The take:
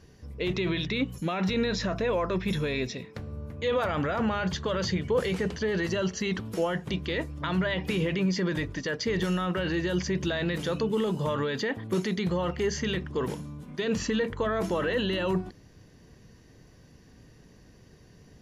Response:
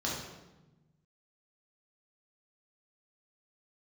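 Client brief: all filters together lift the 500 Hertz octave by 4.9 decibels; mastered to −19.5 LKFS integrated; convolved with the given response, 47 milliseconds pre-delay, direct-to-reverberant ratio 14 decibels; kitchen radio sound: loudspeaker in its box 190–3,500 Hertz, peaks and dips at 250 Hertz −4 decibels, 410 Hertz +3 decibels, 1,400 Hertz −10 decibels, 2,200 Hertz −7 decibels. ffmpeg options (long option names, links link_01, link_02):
-filter_complex "[0:a]equalizer=frequency=500:width_type=o:gain=4.5,asplit=2[link_01][link_02];[1:a]atrim=start_sample=2205,adelay=47[link_03];[link_02][link_03]afir=irnorm=-1:irlink=0,volume=-20dB[link_04];[link_01][link_04]amix=inputs=2:normalize=0,highpass=190,equalizer=frequency=250:width_type=q:width=4:gain=-4,equalizer=frequency=410:width_type=q:width=4:gain=3,equalizer=frequency=1400:width_type=q:width=4:gain=-10,equalizer=frequency=2200:width_type=q:width=4:gain=-7,lowpass=frequency=3500:width=0.5412,lowpass=frequency=3500:width=1.3066,volume=8dB"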